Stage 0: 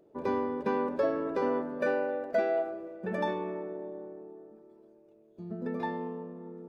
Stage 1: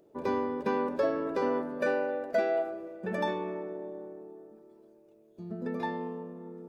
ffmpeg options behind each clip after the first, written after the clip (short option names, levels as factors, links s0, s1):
-af "highshelf=f=3700:g=7"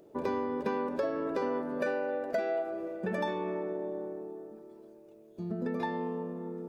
-af "acompressor=threshold=0.0158:ratio=3,volume=1.78"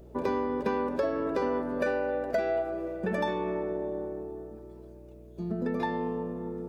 -af "aeval=exprs='val(0)+0.00224*(sin(2*PI*60*n/s)+sin(2*PI*2*60*n/s)/2+sin(2*PI*3*60*n/s)/3+sin(2*PI*4*60*n/s)/4+sin(2*PI*5*60*n/s)/5)':c=same,volume=1.41"